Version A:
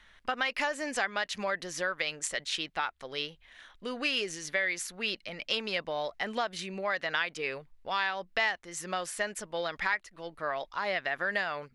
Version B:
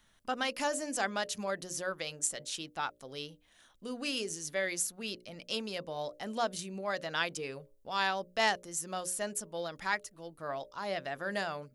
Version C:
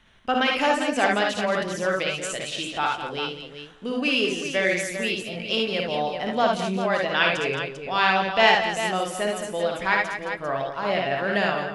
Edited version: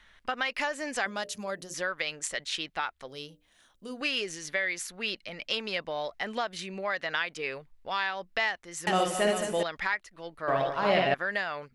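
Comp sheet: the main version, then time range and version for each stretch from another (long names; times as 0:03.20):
A
0:01.06–0:01.74: punch in from B
0:03.08–0:04.01: punch in from B
0:08.87–0:09.63: punch in from C
0:10.48–0:11.14: punch in from C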